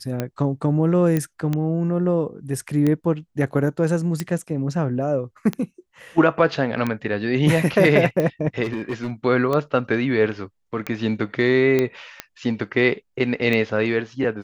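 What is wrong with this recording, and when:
tick 45 rpm -11 dBFS
1.17 pop -10 dBFS
8.63–9.11 clipped -21 dBFS
11.79 pop -8 dBFS

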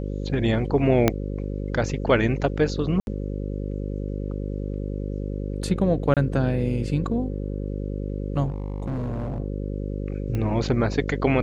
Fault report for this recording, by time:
buzz 50 Hz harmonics 11 -29 dBFS
1.08 pop -4 dBFS
3–3.07 gap 71 ms
6.14–6.17 gap 27 ms
8.47–9.4 clipped -24.5 dBFS
10.35 pop -17 dBFS

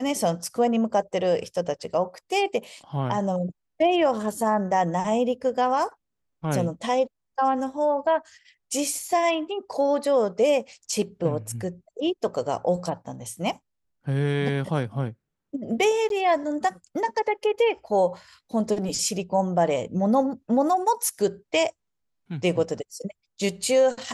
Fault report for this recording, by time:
16.09–16.1 gap 12 ms

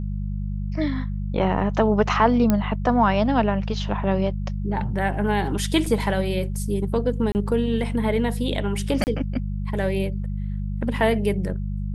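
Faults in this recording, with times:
hum 50 Hz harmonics 4 -27 dBFS
2.5 pop -7 dBFS
5.86 gap 3.8 ms
7.32–7.35 gap 29 ms
9.04–9.07 gap 29 ms

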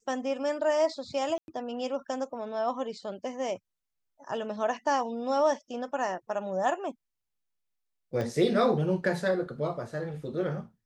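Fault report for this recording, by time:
1.38–1.48 gap 0.101 s
8.21 pop -21 dBFS

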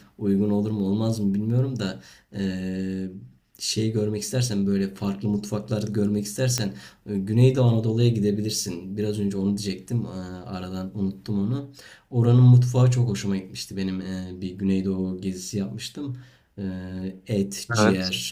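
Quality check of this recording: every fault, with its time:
6.58 pop -9 dBFS

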